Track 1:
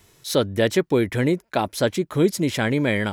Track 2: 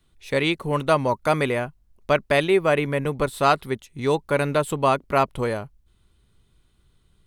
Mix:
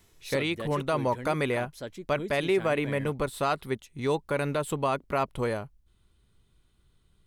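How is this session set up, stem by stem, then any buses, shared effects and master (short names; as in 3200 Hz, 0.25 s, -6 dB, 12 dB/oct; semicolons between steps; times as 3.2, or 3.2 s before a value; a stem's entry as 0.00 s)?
-7.0 dB, 0.00 s, no send, auto duck -11 dB, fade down 0.60 s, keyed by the second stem
-4.0 dB, 0.00 s, no send, dry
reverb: off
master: limiter -16.5 dBFS, peak gain reduction 6.5 dB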